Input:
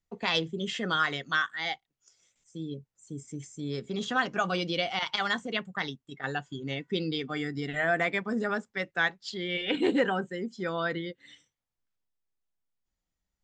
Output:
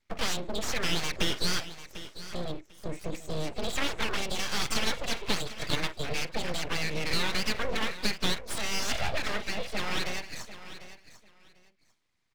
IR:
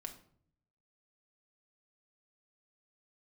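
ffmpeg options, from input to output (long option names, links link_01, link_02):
-filter_complex "[0:a]acrossover=split=460|3000[link_01][link_02][link_03];[link_02]acompressor=threshold=-30dB:ratio=5[link_04];[link_01][link_04][link_03]amix=inputs=3:normalize=0,asplit=2[link_05][link_06];[link_06]asetrate=52444,aresample=44100,atempo=0.840896,volume=-10dB[link_07];[link_05][link_07]amix=inputs=2:normalize=0,acrossover=split=110|1700[link_08][link_09][link_10];[link_09]asplit=2[link_11][link_12];[link_12]adelay=49,volume=-11.5dB[link_13];[link_11][link_13]amix=inputs=2:normalize=0[link_14];[link_10]asoftclip=type=tanh:threshold=-33.5dB[link_15];[link_08][link_14][link_15]amix=inputs=3:normalize=0,acompressor=threshold=-40dB:ratio=2.5,equalizer=frequency=125:width_type=o:width=1:gain=8,equalizer=frequency=250:width_type=o:width=1:gain=7,equalizer=frequency=500:width_type=o:width=1:gain=-8,equalizer=frequency=1000:width_type=o:width=1:gain=10,equalizer=frequency=2000:width_type=o:width=1:gain=11,equalizer=frequency=4000:width_type=o:width=1:gain=8,asplit=2[link_16][link_17];[link_17]aecho=0:1:812|1624:0.2|0.0379[link_18];[link_16][link_18]amix=inputs=2:normalize=0,asetrate=48000,aresample=44100,lowpass=6900,equalizer=frequency=440:width_type=o:width=0.34:gain=7,aeval=exprs='abs(val(0))':channel_layout=same,volume=3.5dB"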